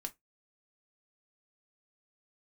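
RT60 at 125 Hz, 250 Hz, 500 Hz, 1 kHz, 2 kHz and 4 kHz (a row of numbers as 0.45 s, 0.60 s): 0.20 s, 0.15 s, 0.15 s, 0.15 s, 0.15 s, 0.10 s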